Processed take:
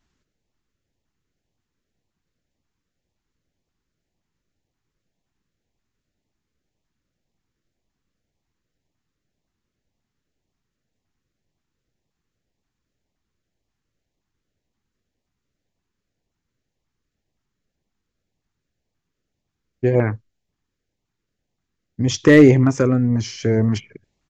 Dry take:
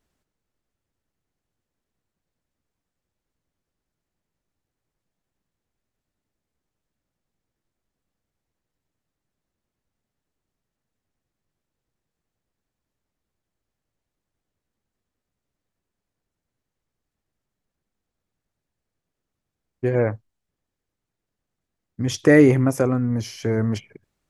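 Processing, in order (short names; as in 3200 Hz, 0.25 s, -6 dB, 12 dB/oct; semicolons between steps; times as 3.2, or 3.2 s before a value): downsampling 16000 Hz; overloaded stage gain 7 dB; LFO notch saw up 1.9 Hz 460–1600 Hz; gain +4.5 dB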